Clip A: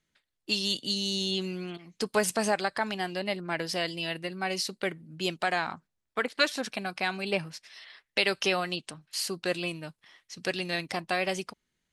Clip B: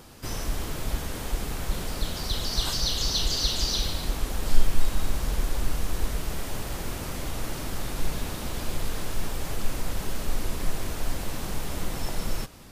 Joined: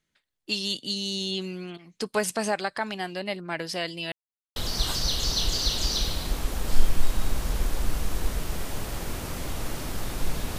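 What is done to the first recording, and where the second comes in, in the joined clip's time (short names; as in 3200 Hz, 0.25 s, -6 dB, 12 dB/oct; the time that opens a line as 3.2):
clip A
4.12–4.56 mute
4.56 switch to clip B from 2.34 s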